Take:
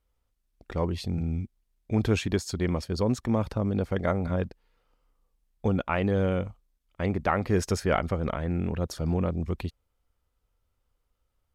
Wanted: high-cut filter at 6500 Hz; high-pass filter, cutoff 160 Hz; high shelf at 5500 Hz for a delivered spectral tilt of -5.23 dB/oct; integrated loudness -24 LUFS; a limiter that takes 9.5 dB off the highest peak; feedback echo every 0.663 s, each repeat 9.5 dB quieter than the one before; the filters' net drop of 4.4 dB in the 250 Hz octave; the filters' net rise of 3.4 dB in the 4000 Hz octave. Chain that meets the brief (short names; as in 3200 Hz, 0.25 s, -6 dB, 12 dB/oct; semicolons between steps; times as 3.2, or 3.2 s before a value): HPF 160 Hz; LPF 6500 Hz; bell 250 Hz -4.5 dB; bell 4000 Hz +3.5 dB; high shelf 5500 Hz +4 dB; limiter -18 dBFS; feedback echo 0.663 s, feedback 33%, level -9.5 dB; gain +9.5 dB